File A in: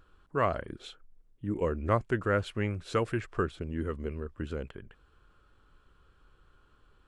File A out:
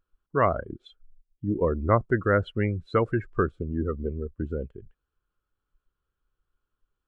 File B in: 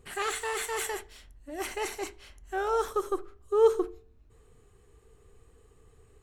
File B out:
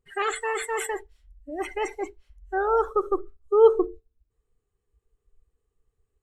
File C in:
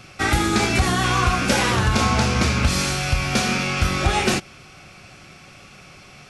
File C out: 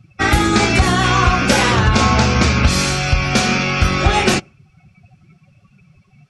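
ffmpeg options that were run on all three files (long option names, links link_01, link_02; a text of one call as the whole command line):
ffmpeg -i in.wav -af "afftdn=noise_reduction=26:noise_floor=-35,volume=5.5dB" out.wav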